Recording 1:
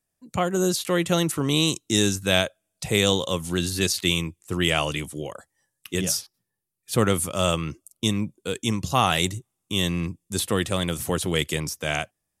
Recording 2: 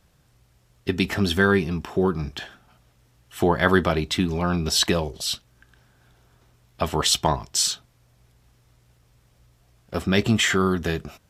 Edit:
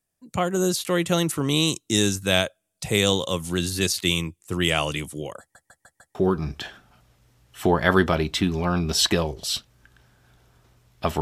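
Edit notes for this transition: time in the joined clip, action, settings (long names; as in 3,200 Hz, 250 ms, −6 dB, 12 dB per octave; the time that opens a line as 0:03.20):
recording 1
0:05.40: stutter in place 0.15 s, 5 plays
0:06.15: continue with recording 2 from 0:01.92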